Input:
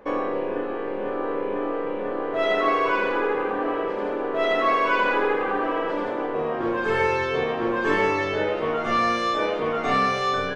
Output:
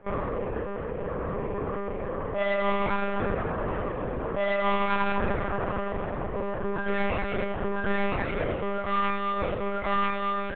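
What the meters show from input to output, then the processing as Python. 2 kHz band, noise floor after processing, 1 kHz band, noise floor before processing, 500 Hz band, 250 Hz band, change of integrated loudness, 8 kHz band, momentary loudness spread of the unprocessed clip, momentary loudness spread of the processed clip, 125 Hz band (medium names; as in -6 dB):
-6.5 dB, -33 dBFS, -5.5 dB, -29 dBFS, -5.5 dB, -3.5 dB, -5.0 dB, no reading, 7 LU, 6 LU, +4.5 dB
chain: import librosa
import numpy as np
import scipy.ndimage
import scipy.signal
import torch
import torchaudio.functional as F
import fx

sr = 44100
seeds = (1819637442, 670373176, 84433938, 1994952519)

y = fx.tracing_dist(x, sr, depth_ms=0.13)
y = fx.lpc_monotone(y, sr, seeds[0], pitch_hz=200.0, order=10)
y = scipy.signal.sosfilt(scipy.signal.butter(2, 3000.0, 'lowpass', fs=sr, output='sos'), y)
y = y * 10.0 ** (-4.0 / 20.0)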